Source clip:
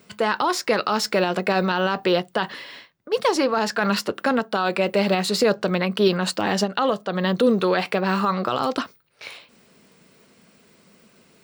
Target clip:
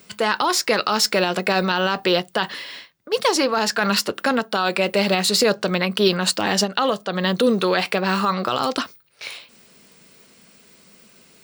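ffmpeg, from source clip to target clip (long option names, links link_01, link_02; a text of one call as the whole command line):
ffmpeg -i in.wav -af "highshelf=frequency=2500:gain=8.5" out.wav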